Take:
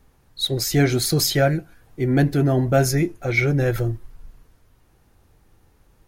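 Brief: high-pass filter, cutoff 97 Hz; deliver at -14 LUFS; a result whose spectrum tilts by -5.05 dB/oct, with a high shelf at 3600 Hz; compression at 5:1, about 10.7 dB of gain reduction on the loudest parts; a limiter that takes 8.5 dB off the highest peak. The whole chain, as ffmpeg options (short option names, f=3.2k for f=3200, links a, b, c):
-af "highpass=97,highshelf=f=3.6k:g=-8.5,acompressor=threshold=-25dB:ratio=5,volume=19dB,alimiter=limit=-5dB:level=0:latency=1"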